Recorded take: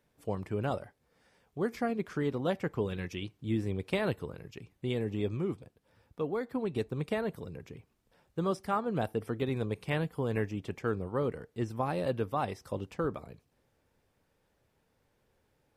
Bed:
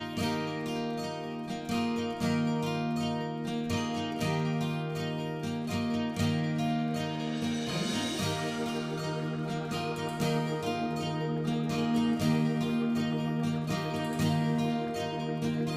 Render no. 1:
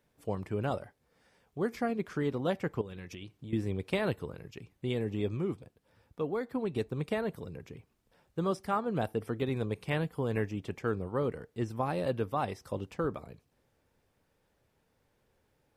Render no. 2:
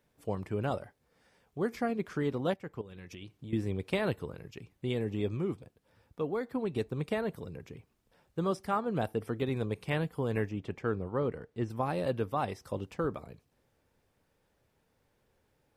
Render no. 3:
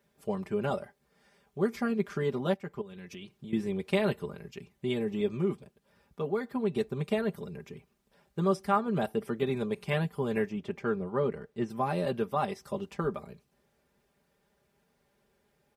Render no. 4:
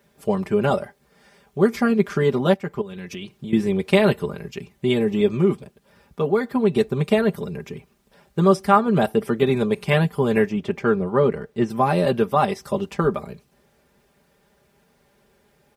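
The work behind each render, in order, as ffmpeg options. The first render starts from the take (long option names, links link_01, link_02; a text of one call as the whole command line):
ffmpeg -i in.wav -filter_complex "[0:a]asettb=1/sr,asplit=3[link_01][link_02][link_03];[link_01]atrim=end=2.814[link_04];[link_02]atrim=start=2.81:end=3.53,asetpts=PTS-STARTPTS,afade=type=in:duration=0.004:curve=qsin,afade=type=out:start_time=0.716:duration=0.004:curve=qsin,acompressor=threshold=-40dB:ratio=6:attack=3.2:release=140:knee=1:detection=peak[link_05];[link_03]atrim=start=3.526[link_06];[link_04][link_05]acrossfade=duration=0.004:curve1=hsin:curve2=qsin[link_07];[link_07][link_06]acrossfade=duration=0.004:curve1=qsin:curve2=hsin" out.wav
ffmpeg -i in.wav -filter_complex "[0:a]asettb=1/sr,asplit=3[link_01][link_02][link_03];[link_01]atrim=end=10.494[link_04];[link_02]atrim=start=10.49:end=11.7,asetpts=PTS-STARTPTS,afade=type=in:duration=0.004:curve=qsin,afade=type=out:start_time=1.206:duration=0.004:curve=qsin,highshelf=frequency=6000:gain=-12[link_05];[link_03]atrim=start=11.696[link_06];[link_04][link_05]acrossfade=duration=0.004:curve1=hsin:curve2=qsin[link_07];[link_07][link_06]acrossfade=duration=0.004:curve1=qsin:curve2=hsin,asplit=2[link_08][link_09];[link_08]atrim=end=2.54,asetpts=PTS-STARTPTS,afade=type=out:start_time=2.536:duration=0.004:curve=hsin:silence=0.251189[link_10];[link_09]atrim=start=2.54,asetpts=PTS-STARTPTS,afade=type=in:duration=0.82:silence=0.251189[link_11];[link_10][link_11]concat=n=2:v=0:a=1" out.wav
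ffmpeg -i in.wav -af "highpass=50,aecho=1:1:5:0.8" out.wav
ffmpeg -i in.wav -af "volume=11dB" out.wav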